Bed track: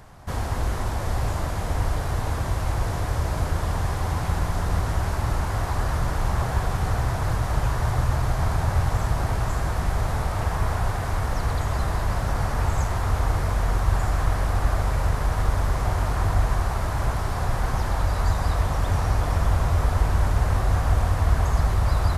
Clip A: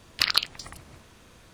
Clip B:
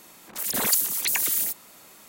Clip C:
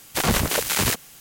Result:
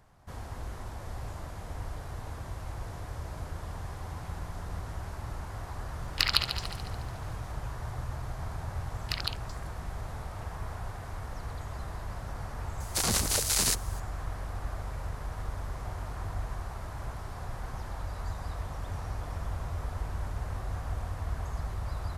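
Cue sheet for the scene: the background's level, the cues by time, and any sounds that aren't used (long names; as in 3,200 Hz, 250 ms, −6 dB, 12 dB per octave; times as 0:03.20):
bed track −14 dB
0:05.99: mix in A −3.5 dB + echo machine with several playback heads 72 ms, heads first and second, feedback 56%, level −12.5 dB
0:08.90: mix in A −11.5 dB
0:12.80: mix in C −10.5 dB + flat-topped bell 6,700 Hz +9.5 dB
not used: B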